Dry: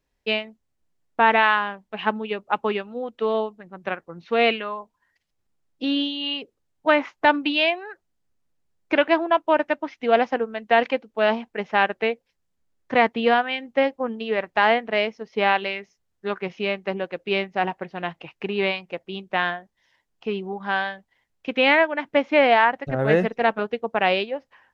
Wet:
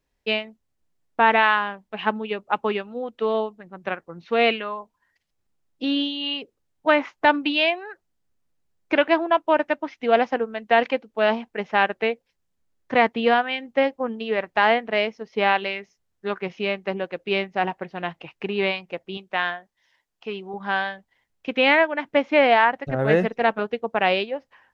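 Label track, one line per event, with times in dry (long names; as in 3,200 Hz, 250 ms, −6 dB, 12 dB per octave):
19.170000	20.540000	low-shelf EQ 430 Hz −8.5 dB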